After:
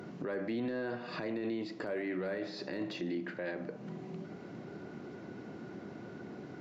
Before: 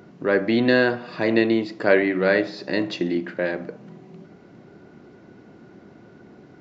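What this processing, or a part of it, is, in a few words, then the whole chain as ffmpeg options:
podcast mastering chain: -af "highpass=85,deesser=1,acompressor=threshold=0.00891:ratio=2,alimiter=level_in=2.11:limit=0.0631:level=0:latency=1:release=13,volume=0.473,volume=1.26" -ar 44100 -c:a libmp3lame -b:a 96k

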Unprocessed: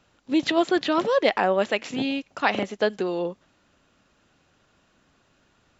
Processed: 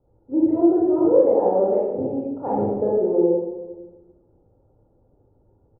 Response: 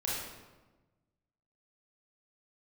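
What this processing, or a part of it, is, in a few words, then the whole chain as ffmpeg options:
next room: -filter_complex "[0:a]lowpass=f=690:w=0.5412,lowpass=f=690:w=1.3066[s0];[1:a]atrim=start_sample=2205[s1];[s0][s1]afir=irnorm=-1:irlink=0,asettb=1/sr,asplit=3[s2][s3][s4];[s2]atrim=end=2.464[s5];[s3]atrim=start=2.46:end=2.98,asetpts=PTS-STARTPTS,afade=t=in:d=0.004:c=qsin,afade=t=out:st=0.516:d=0.004:c=qsin,bass=f=250:g=6,treble=f=4000:g=10[s6];[s4]atrim=start=2.976[s7];[s5][s6]acrossfade=d=0.004:c1=hsin:c2=qsin[s8];[s8][s7]acrossfade=d=0.004:c1=qsin:c2=hsin,equalizer=f=1700:w=1.6:g=-5,aecho=1:1:2.3:0.53"

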